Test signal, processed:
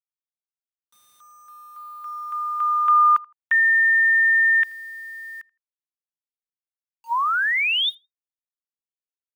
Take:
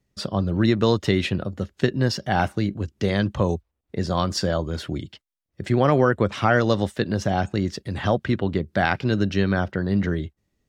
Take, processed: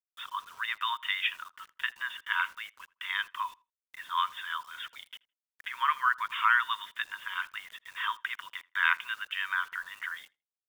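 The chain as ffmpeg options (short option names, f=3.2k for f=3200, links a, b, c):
-filter_complex "[0:a]afftfilt=real='re*between(b*sr/4096,920,3700)':imag='im*between(b*sr/4096,920,3700)':win_size=4096:overlap=0.75,acrusher=bits=8:mix=0:aa=0.000001,asplit=2[a][b];[b]adelay=81,lowpass=f=2.7k:p=1,volume=-23.5dB,asplit=2[c][d];[d]adelay=81,lowpass=f=2.7k:p=1,volume=0.22[e];[a][c][e]amix=inputs=3:normalize=0"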